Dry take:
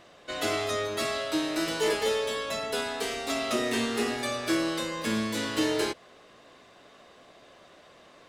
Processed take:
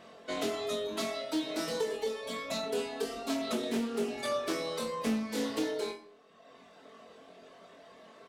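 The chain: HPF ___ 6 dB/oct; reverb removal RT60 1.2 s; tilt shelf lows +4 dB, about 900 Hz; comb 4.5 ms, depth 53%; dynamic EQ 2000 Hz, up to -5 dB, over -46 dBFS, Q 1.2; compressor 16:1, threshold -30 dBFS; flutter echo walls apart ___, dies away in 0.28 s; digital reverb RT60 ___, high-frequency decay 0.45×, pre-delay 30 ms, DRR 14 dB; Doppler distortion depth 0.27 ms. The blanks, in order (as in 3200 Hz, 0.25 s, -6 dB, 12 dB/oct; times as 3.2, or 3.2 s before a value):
200 Hz, 3.8 m, 0.62 s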